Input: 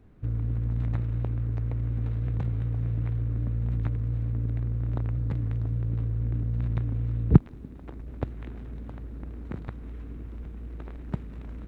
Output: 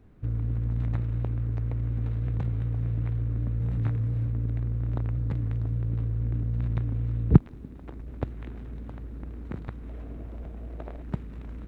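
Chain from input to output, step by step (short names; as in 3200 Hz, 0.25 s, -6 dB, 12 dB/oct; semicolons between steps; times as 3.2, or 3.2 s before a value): 3.57–4.27 doubler 28 ms -4 dB; 9.89–11.02 bell 640 Hz +12.5 dB 0.64 oct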